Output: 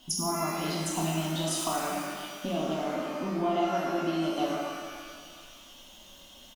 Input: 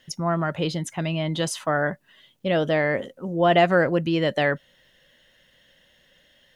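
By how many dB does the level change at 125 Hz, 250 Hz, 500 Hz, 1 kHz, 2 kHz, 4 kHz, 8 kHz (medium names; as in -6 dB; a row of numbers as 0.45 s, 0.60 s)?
-8.5 dB, -4.5 dB, -9.5 dB, -5.0 dB, -13.0 dB, -3.5 dB, +4.0 dB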